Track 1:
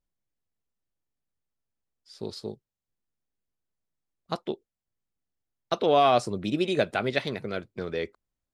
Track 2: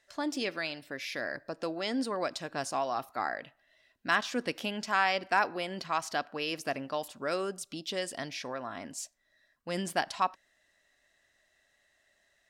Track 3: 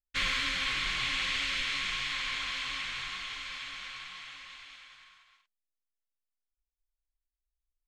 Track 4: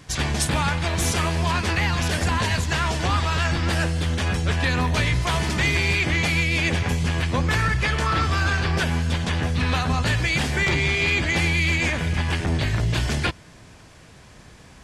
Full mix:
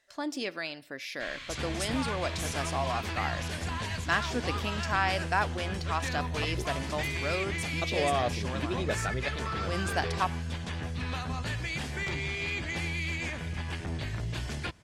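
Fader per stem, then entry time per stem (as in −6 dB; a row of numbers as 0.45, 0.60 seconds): −8.5, −1.0, −13.0, −12.0 decibels; 2.10, 0.00, 1.05, 1.40 seconds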